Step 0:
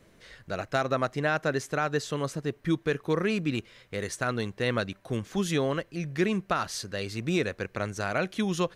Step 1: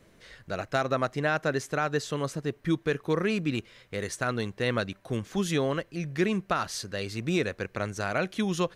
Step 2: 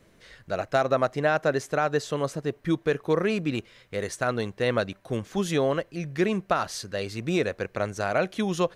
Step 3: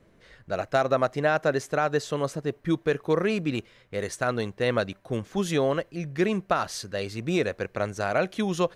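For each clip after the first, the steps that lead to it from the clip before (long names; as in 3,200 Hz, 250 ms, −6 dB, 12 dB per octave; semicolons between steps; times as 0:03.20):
no processing that can be heard
dynamic equaliser 630 Hz, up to +6 dB, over −41 dBFS, Q 1.1
one half of a high-frequency compander decoder only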